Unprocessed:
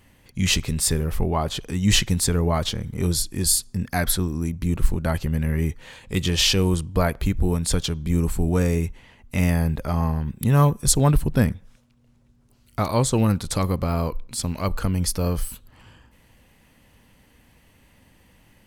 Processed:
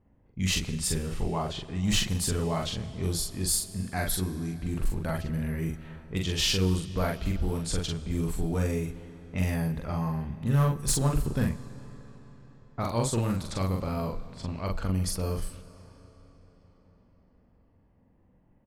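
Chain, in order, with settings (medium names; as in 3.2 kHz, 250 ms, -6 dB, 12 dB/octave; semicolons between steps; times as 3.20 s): level-controlled noise filter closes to 740 Hz, open at -18 dBFS; hard clipper -11.5 dBFS, distortion -19 dB; doubling 43 ms -2.5 dB; on a send: reverberation RT60 5.0 s, pre-delay 40 ms, DRR 15 dB; on the sum: trim -8.5 dB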